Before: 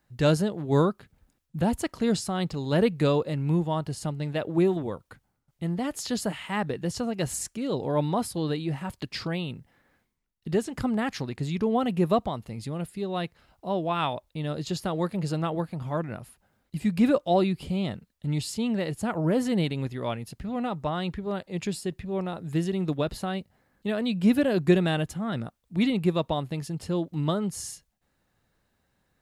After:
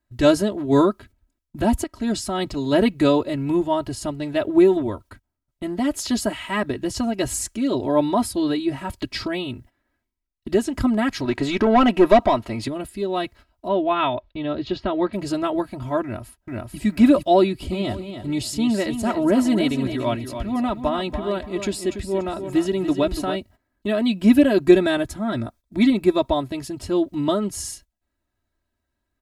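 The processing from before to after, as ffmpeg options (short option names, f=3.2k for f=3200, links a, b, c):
-filter_complex "[0:a]asettb=1/sr,asplit=3[a][b][c];[a]atrim=end=11.254[d];[b]atrim=start=11.25:end=12.68,asetpts=PTS-STARTPTS,afade=t=in:d=0.004:c=qsin,afade=t=out:st=1.426:d=0.004:c=qsin,asplit=2[e][f];[f]highpass=f=720:p=1,volume=19dB,asoftclip=type=tanh:threshold=-12dB[g];[e][g]amix=inputs=2:normalize=0,lowpass=f=1.9k:p=1,volume=-6dB[h];[c]atrim=start=12.676[i];[d][h]acrossfade=d=0.004:c1=hsin:c2=qsin[j];[j][i]acrossfade=d=0.004:c1=qsin:c2=hsin,asettb=1/sr,asplit=3[k][l][m];[k]atrim=end=13.684[n];[l]atrim=start=13.68:end=15.13,asetpts=PTS-STARTPTS,afade=t=in:d=0.004:c=qsin,afade=t=out:st=1.446:d=0.004:c=qsin,lowpass=f=3.8k:w=0.5412,lowpass=f=3.8k:w=1.3066[o];[m]atrim=start=15.126[p];[n][o]acrossfade=d=0.004:c1=hsin:c2=qsin[q];[q][p]acrossfade=d=0.004:c1=qsin:c2=hsin,asplit=2[r][s];[s]afade=t=in:st=16.03:d=0.01,afade=t=out:st=16.78:d=0.01,aecho=0:1:440|880|1320|1760:1|0.3|0.09|0.027[t];[r][t]amix=inputs=2:normalize=0,asplit=3[u][v][w];[u]afade=t=out:st=17.71:d=0.02[x];[v]aecho=1:1:287|574|861:0.355|0.0993|0.0278,afade=t=in:st=17.71:d=0.02,afade=t=out:st=23.35:d=0.02[y];[w]afade=t=in:st=23.35:d=0.02[z];[x][y][z]amix=inputs=3:normalize=0,asettb=1/sr,asplit=3[aa][ab][ac];[aa]atrim=end=24.704[ad];[ab]atrim=start=24.7:end=26.49,asetpts=PTS-STARTPTS,afade=t=in:d=0.004:c=qsin,afade=t=out:st=1.786:d=0.004:c=qsin,bandreject=f=2.9k:w=10[ae];[ac]atrim=start=26.486[af];[ad][ae]acrossfade=d=0.004:c1=hsin:c2=qsin[ag];[ag][af]acrossfade=d=0.004:c1=qsin:c2=hsin,asplit=2[ah][ai];[ah]atrim=end=1.84,asetpts=PTS-STARTPTS,afade=t=out:st=1.836:d=0.004:c=hsin:silence=0.199526[aj];[ai]atrim=start=1.84,asetpts=PTS-STARTPTS,afade=t=in:d=0.66:c=qsin:silence=0.199526[ak];[aj][ak]concat=n=2:v=0:a=1,agate=range=-14dB:threshold=-50dB:ratio=16:detection=peak,lowshelf=f=200:g=5.5,aecho=1:1:3.1:0.94,volume=3dB"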